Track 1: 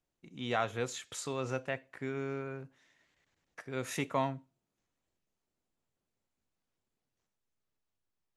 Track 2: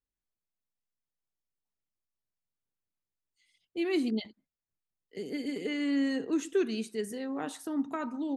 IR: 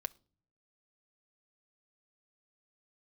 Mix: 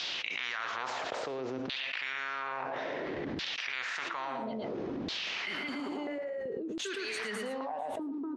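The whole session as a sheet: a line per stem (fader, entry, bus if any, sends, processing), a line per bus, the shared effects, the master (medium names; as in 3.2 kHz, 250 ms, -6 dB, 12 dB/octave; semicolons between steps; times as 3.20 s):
+1.5 dB, 0.00 s, no send, echo send -12.5 dB, steep low-pass 5.6 kHz 36 dB/octave; spectrum-flattening compressor 4:1
-9.0 dB, 0.30 s, no send, echo send -4 dB, stepped phaser 2.6 Hz 280–1700 Hz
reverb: none
echo: delay 113 ms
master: LFO band-pass saw down 0.59 Hz 250–3900 Hz; level flattener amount 100%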